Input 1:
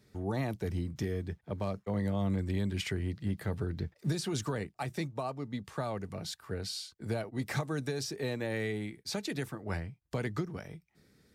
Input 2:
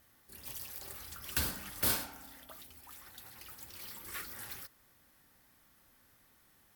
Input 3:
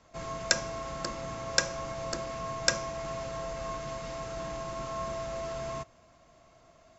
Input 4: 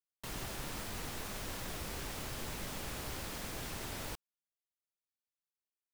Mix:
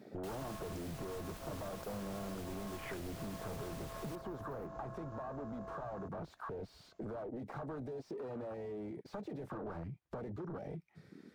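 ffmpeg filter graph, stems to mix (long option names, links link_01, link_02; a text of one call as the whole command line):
ffmpeg -i stem1.wav -i stem2.wav -i stem3.wav -i stem4.wav -filter_complex "[0:a]acompressor=threshold=-39dB:ratio=2.5,asplit=2[link_01][link_02];[link_02]highpass=frequency=720:poles=1,volume=39dB,asoftclip=type=tanh:threshold=-22dB[link_03];[link_01][link_03]amix=inputs=2:normalize=0,lowpass=frequency=1300:poles=1,volume=-6dB,volume=-6.5dB,asplit=2[link_04][link_05];[1:a]volume=-13.5dB[link_06];[2:a]acompressor=threshold=-42dB:ratio=8,adelay=250,volume=2dB[link_07];[3:a]volume=-8dB[link_08];[link_05]apad=whole_len=297691[link_09];[link_06][link_09]sidechaincompress=threshold=-50dB:ratio=8:attack=16:release=568[link_10];[link_10][link_08]amix=inputs=2:normalize=0,alimiter=level_in=17dB:limit=-24dB:level=0:latency=1:release=125,volume=-17dB,volume=0dB[link_11];[link_04][link_07]amix=inputs=2:normalize=0,afwtdn=0.0141,acompressor=threshold=-41dB:ratio=6,volume=0dB[link_12];[link_11][link_12]amix=inputs=2:normalize=0" out.wav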